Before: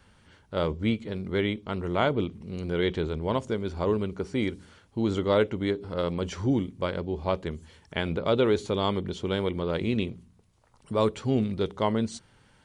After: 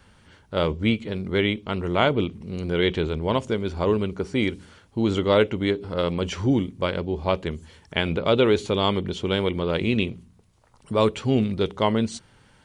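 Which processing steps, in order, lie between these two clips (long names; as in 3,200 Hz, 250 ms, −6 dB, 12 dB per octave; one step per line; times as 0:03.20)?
dynamic equaliser 2,700 Hz, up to +6 dB, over −50 dBFS, Q 2.2
level +4 dB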